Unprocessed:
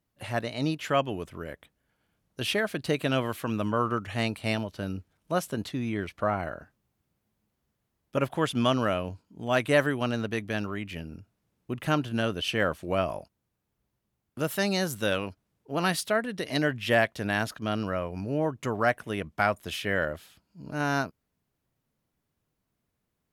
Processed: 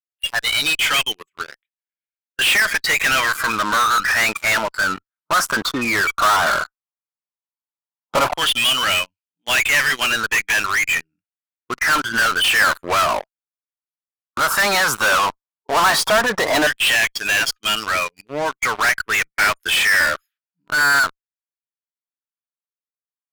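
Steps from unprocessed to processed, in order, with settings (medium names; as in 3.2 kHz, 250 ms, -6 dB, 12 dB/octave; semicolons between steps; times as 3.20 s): RIAA curve playback; LFO high-pass saw down 0.12 Hz 890–2900 Hz; spectral noise reduction 27 dB; in parallel at -6 dB: fuzz box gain 49 dB, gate -58 dBFS; on the sum: trim +2.5 dB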